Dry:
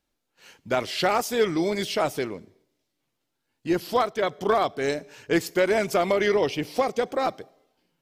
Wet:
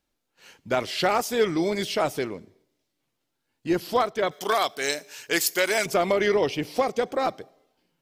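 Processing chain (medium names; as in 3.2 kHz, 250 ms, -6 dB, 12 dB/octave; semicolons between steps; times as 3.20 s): 4.31–5.86 s: tilt EQ +4 dB/octave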